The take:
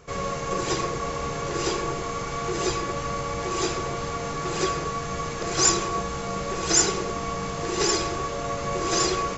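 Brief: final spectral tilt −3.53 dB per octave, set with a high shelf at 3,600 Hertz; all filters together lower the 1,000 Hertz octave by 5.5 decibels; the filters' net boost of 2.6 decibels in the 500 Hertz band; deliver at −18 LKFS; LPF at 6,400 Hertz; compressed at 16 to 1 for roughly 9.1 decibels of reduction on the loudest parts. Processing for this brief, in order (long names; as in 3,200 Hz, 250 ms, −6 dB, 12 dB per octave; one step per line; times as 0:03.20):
low-pass filter 6,400 Hz
parametric band 500 Hz +5 dB
parametric band 1,000 Hz −8.5 dB
high-shelf EQ 3,600 Hz +5 dB
downward compressor 16 to 1, threshold −23 dBFS
level +10.5 dB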